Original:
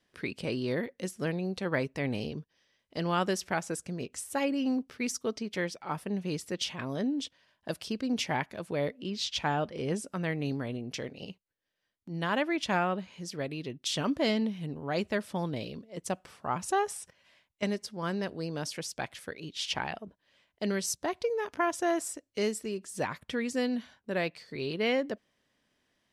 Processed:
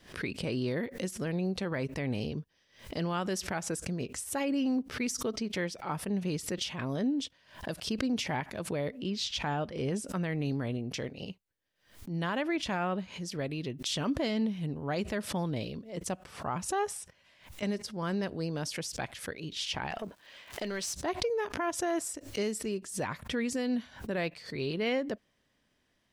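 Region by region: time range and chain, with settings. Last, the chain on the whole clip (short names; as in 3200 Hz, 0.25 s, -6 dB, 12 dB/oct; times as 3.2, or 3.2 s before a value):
19.9–20.94 compressor 5:1, threshold -43 dBFS + overdrive pedal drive 22 dB, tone 5200 Hz, clips at -22 dBFS + crackle 530/s -56 dBFS
whole clip: low shelf 110 Hz +8 dB; limiter -23 dBFS; backwards sustainer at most 130 dB/s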